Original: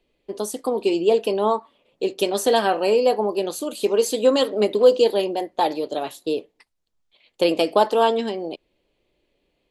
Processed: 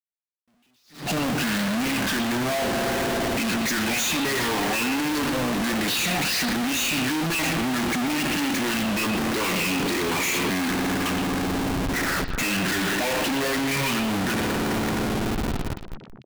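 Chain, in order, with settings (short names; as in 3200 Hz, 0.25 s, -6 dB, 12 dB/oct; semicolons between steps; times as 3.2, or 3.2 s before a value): HPF 97 Hz 24 dB/oct; high shelf 4100 Hz +6.5 dB; compressor 5:1, threshold -22 dBFS, peak gain reduction 12.5 dB; phaser stages 6, 2.4 Hz, lowest notch 620–1400 Hz; spring tank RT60 2.6 s, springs 32 ms, chirp 55 ms, DRR 12.5 dB; wide varispeed 0.597×; overdrive pedal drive 26 dB, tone 5100 Hz, clips at -13.5 dBFS; Schmitt trigger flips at -43.5 dBFS; on a send: delay with a stepping band-pass 0.12 s, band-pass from 3200 Hz, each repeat -1.4 oct, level -5 dB; on the sum: attack slew limiter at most 150 dB/s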